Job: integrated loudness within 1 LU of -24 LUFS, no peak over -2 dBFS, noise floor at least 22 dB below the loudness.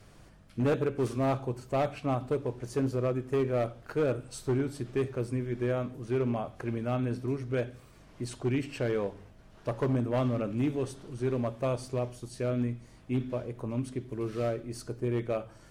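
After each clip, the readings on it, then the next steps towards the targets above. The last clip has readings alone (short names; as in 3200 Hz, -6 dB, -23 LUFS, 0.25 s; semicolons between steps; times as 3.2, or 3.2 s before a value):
clipped 1.7%; flat tops at -22.5 dBFS; hum 50 Hz; harmonics up to 200 Hz; hum level -58 dBFS; loudness -32.0 LUFS; peak -22.5 dBFS; loudness target -24.0 LUFS
-> clip repair -22.5 dBFS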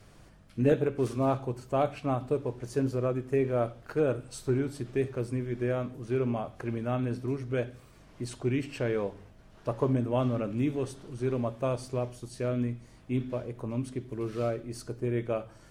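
clipped 0.0%; hum 50 Hz; harmonics up to 200 Hz; hum level -58 dBFS
-> de-hum 50 Hz, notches 4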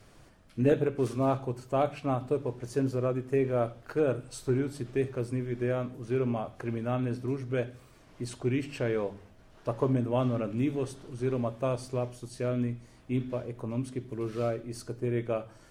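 hum none; loudness -31.5 LUFS; peak -13.5 dBFS; loudness target -24.0 LUFS
-> gain +7.5 dB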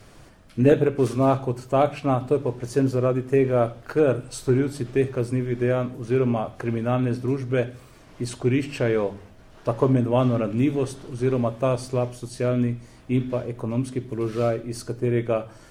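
loudness -24.0 LUFS; peak -6.0 dBFS; noise floor -49 dBFS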